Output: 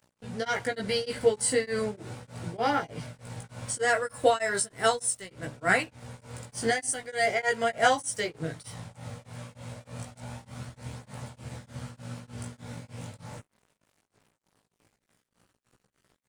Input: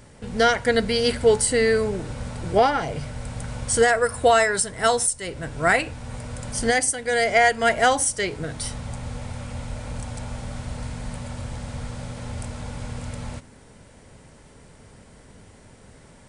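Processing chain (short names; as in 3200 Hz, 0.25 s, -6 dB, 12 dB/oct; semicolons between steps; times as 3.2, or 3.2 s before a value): HPF 98 Hz 24 dB/oct; crossover distortion -45.5 dBFS; chorus voices 2, 0.18 Hz, delay 17 ms, depth 2 ms; beating tremolo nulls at 3.3 Hz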